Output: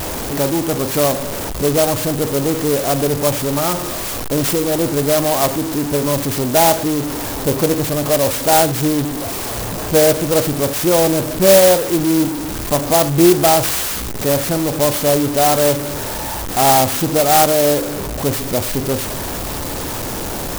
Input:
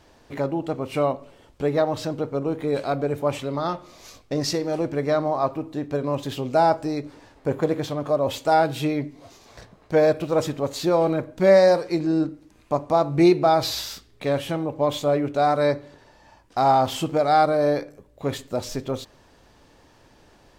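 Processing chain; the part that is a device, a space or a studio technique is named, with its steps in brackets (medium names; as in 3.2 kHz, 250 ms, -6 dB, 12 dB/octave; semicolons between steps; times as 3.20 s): early CD player with a faulty converter (jump at every zero crossing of -22 dBFS; sampling jitter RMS 0.12 ms); trim +4 dB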